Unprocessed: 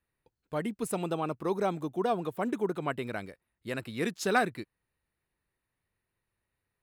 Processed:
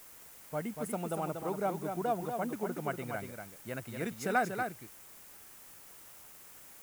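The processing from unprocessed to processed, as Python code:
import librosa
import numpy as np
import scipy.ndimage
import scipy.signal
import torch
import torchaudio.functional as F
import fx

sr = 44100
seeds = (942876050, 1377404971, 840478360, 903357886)

y = scipy.signal.sosfilt(scipy.signal.butter(4, 54.0, 'highpass', fs=sr, output='sos'), x)
y = y + 0.34 * np.pad(y, (int(1.4 * sr / 1000.0), 0))[:len(y)]
y = y + 10.0 ** (-6.0 / 20.0) * np.pad(y, (int(238 * sr / 1000.0), 0))[:len(y)]
y = fx.quant_dither(y, sr, seeds[0], bits=8, dither='triangular')
y = fx.peak_eq(y, sr, hz=4000.0, db=-8.5, octaves=1.2)
y = F.gain(torch.from_numpy(y), -4.0).numpy()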